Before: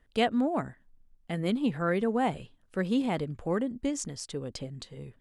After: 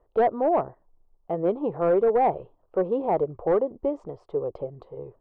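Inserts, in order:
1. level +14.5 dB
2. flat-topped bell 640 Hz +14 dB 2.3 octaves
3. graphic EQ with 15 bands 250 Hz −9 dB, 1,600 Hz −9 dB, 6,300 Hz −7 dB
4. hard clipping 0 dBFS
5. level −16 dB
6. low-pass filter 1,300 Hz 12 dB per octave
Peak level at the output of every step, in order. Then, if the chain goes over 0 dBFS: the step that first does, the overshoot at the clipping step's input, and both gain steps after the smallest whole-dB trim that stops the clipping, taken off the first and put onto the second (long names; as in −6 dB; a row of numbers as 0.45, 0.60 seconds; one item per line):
+3.0, +11.5, +10.0, 0.0, −16.0, −15.5 dBFS
step 1, 10.0 dB
step 1 +4.5 dB, step 5 −6 dB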